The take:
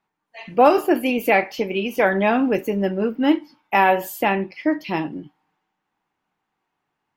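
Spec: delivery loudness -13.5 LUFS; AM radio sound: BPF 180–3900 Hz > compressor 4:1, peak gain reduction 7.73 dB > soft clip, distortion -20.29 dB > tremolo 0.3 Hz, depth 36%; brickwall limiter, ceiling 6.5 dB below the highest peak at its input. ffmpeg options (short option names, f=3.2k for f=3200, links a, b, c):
-af "alimiter=limit=-9dB:level=0:latency=1,highpass=180,lowpass=3.9k,acompressor=threshold=-22dB:ratio=4,asoftclip=threshold=-16.5dB,tremolo=f=0.3:d=0.36,volume=16.5dB"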